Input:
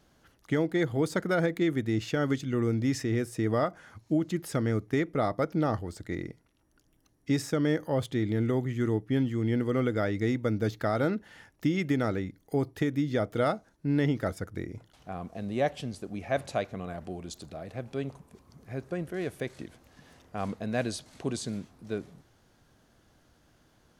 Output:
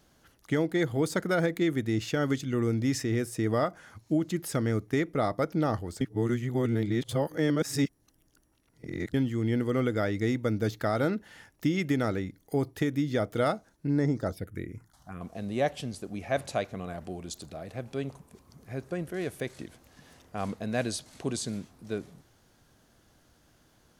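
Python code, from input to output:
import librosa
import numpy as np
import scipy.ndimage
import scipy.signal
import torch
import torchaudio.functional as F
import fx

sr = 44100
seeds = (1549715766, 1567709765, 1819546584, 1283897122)

y = fx.env_phaser(x, sr, low_hz=360.0, high_hz=3000.0, full_db=-24.5, at=(13.87, 15.21))
y = fx.edit(y, sr, fx.reverse_span(start_s=6.01, length_s=3.13), tone=tone)
y = fx.high_shelf(y, sr, hz=5500.0, db=6.0)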